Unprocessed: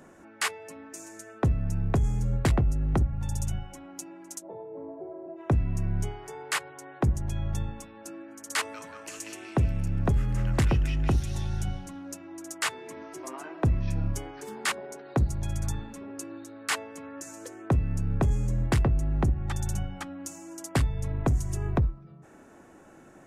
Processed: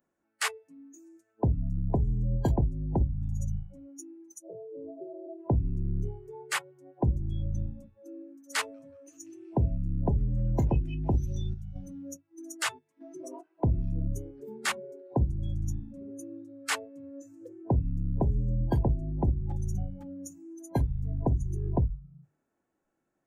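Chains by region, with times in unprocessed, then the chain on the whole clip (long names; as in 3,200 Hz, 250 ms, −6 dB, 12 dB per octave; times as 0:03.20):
0:11.13–0:13.86: square-wave tremolo 1.6 Hz, depth 65%, duty 65% + one half of a high-frequency compander encoder only
whole clip: noise reduction from a noise print of the clip's start 27 dB; mains-hum notches 50/100/150 Hz; level −1 dB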